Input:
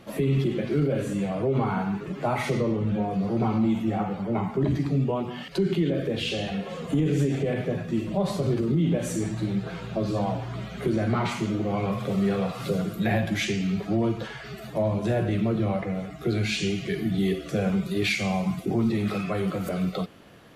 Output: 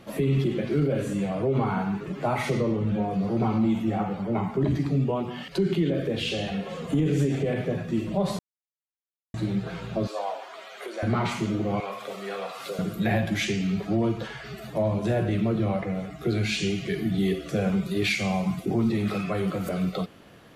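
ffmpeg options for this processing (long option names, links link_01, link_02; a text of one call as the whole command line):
ffmpeg -i in.wav -filter_complex "[0:a]asettb=1/sr,asplit=3[link_01][link_02][link_03];[link_01]atrim=end=10.074[link_04];[link_02]atrim=start=10.07:end=11.03,asetpts=PTS-STARTPTS,afade=type=in:duration=0.004:curve=qsin,afade=type=out:start_time=0.956:duration=0.004:curve=qsin,highpass=frequency=510:width=0.5412,highpass=frequency=510:width=1.3066[link_05];[link_03]atrim=start=11.026[link_06];[link_04][link_05]acrossfade=duration=0.004:curve1=hsin:curve2=qsin[link_07];[link_07][link_06]acrossfade=duration=0.004:curve1=qsin:curve2=hsin,asettb=1/sr,asplit=3[link_08][link_09][link_10];[link_08]atrim=end=11.804[link_11];[link_09]atrim=start=11.8:end=12.79,asetpts=PTS-STARTPTS,afade=type=in:duration=0.004:curve=qsin,afade=type=out:start_time=0.986:duration=0.004:curve=qsin,highpass=580[link_12];[link_10]atrim=start=12.786[link_13];[link_11][link_12]acrossfade=duration=0.004:curve1=hsin:curve2=qsin[link_14];[link_14][link_13]acrossfade=duration=0.004:curve1=qsin:curve2=hsin,asplit=3[link_15][link_16][link_17];[link_15]atrim=end=8.39,asetpts=PTS-STARTPTS,afade=type=out:start_time=8.386:duration=0.004:curve=hsin[link_18];[link_16]atrim=start=8.39:end=9.34,asetpts=PTS-STARTPTS,volume=0[link_19];[link_17]atrim=start=9.34,asetpts=PTS-STARTPTS,afade=type=in:duration=0.004:curve=hsin[link_20];[link_18][link_19][link_20]concat=n=3:v=0:a=1" out.wav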